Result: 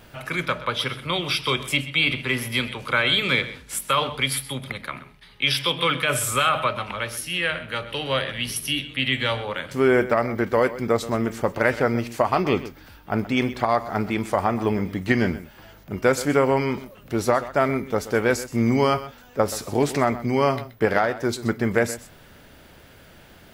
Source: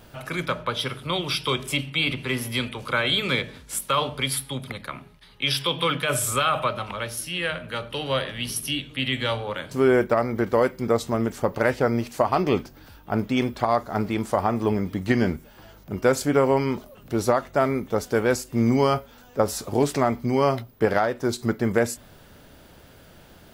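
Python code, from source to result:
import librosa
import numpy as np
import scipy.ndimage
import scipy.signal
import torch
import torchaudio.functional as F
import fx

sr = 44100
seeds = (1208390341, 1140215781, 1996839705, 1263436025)

p1 = fx.peak_eq(x, sr, hz=2100.0, db=5.0, octaves=1.1)
y = p1 + fx.echo_single(p1, sr, ms=127, db=-15.5, dry=0)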